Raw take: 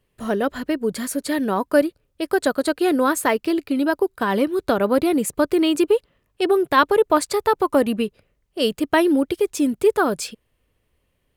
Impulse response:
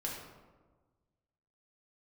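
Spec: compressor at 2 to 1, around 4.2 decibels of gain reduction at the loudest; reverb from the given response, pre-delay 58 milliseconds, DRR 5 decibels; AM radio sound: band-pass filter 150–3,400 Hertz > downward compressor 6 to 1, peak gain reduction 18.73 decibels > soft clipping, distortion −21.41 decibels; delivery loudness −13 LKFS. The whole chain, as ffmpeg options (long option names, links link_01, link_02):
-filter_complex "[0:a]acompressor=threshold=-19dB:ratio=2,asplit=2[link_01][link_02];[1:a]atrim=start_sample=2205,adelay=58[link_03];[link_02][link_03]afir=irnorm=-1:irlink=0,volume=-6.5dB[link_04];[link_01][link_04]amix=inputs=2:normalize=0,highpass=150,lowpass=3400,acompressor=threshold=-35dB:ratio=6,asoftclip=threshold=-27.5dB,volume=25.5dB"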